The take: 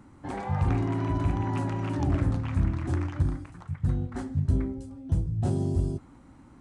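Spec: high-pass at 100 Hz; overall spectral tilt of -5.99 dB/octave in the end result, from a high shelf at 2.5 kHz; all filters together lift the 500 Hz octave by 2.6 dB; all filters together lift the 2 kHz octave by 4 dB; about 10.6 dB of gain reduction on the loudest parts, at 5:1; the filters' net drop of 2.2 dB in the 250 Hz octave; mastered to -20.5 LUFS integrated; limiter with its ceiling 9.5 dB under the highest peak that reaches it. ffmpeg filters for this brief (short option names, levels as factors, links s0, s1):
-af "highpass=100,equalizer=f=250:t=o:g=-4.5,equalizer=f=500:t=o:g=6,equalizer=f=2000:t=o:g=7,highshelf=f=2500:g=-5.5,acompressor=threshold=0.0158:ratio=5,volume=15.8,alimiter=limit=0.266:level=0:latency=1"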